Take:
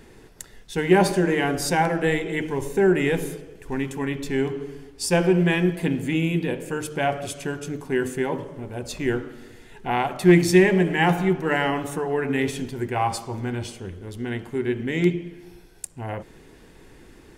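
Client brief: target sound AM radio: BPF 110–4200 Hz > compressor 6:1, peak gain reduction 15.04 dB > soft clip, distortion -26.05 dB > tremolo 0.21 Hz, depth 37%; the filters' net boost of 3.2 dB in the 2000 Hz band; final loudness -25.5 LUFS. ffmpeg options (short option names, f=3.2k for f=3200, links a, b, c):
-af "highpass=110,lowpass=4.2k,equalizer=f=2k:t=o:g=4,acompressor=threshold=-25dB:ratio=6,asoftclip=threshold=-16dB,tremolo=f=0.21:d=0.37,volume=7.5dB"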